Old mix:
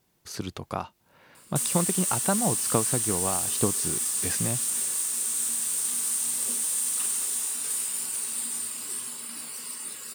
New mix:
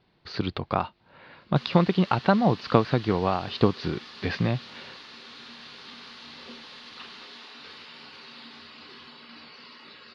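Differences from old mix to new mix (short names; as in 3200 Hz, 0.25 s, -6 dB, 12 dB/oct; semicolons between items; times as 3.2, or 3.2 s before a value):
speech +6.5 dB; master: add elliptic low-pass 4400 Hz, stop band 50 dB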